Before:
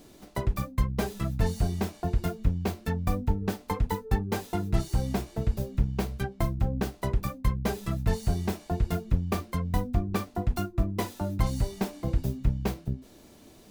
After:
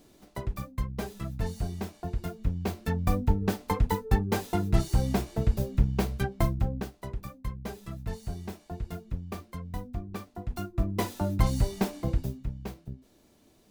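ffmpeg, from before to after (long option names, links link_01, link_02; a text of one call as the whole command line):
ffmpeg -i in.wav -af "volume=13dB,afade=type=in:start_time=2.31:duration=0.86:silence=0.421697,afade=type=out:start_time=6.45:duration=0.46:silence=0.281838,afade=type=in:start_time=10.44:duration=0.67:silence=0.281838,afade=type=out:start_time=11.96:duration=0.48:silence=0.281838" out.wav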